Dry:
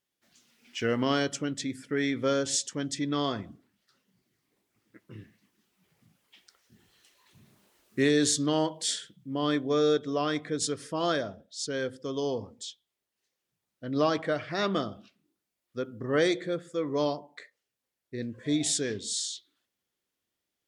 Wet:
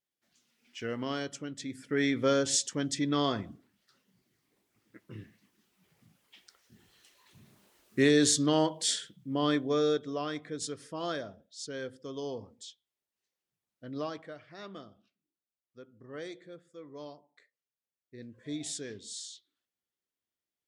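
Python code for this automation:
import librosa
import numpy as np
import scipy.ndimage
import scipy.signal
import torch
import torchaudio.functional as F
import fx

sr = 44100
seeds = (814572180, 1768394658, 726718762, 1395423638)

y = fx.gain(x, sr, db=fx.line((1.54, -8.0), (2.01, 0.5), (9.38, 0.5), (10.35, -7.0), (13.85, -7.0), (14.35, -17.0), (17.34, -17.0), (18.48, -10.0)))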